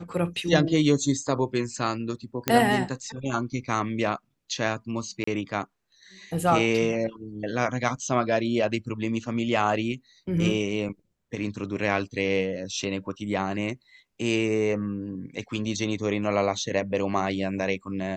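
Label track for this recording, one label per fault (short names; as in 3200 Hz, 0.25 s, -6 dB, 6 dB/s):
2.480000	2.480000	pop -6 dBFS
5.240000	5.270000	gap 34 ms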